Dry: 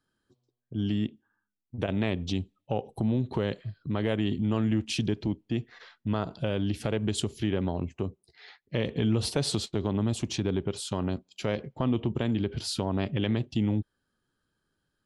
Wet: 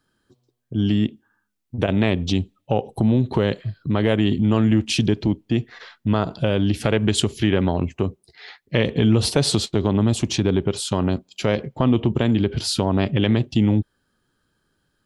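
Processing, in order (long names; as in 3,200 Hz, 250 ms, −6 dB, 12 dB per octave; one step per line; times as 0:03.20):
0:06.76–0:08.83: dynamic equaliser 1,900 Hz, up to +4 dB, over −48 dBFS, Q 0.79
level +9 dB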